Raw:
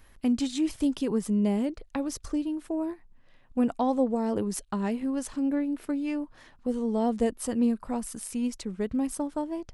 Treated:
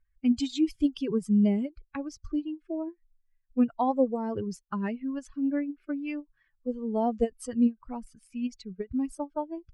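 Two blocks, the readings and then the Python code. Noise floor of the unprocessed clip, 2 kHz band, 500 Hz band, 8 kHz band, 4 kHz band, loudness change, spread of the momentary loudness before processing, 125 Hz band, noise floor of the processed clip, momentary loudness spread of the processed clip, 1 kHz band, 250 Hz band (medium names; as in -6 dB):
-57 dBFS, -1.5 dB, -1.5 dB, under -10 dB, no reading, -0.5 dB, 7 LU, +1.0 dB, -73 dBFS, 12 LU, +0.5 dB, -0.5 dB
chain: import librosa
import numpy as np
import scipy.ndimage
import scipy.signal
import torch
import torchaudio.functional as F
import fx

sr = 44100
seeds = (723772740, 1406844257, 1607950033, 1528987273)

y = fx.bin_expand(x, sr, power=2.0)
y = fx.env_lowpass(y, sr, base_hz=2100.0, full_db=-25.5)
y = fx.end_taper(y, sr, db_per_s=430.0)
y = F.gain(torch.from_numpy(y), 4.0).numpy()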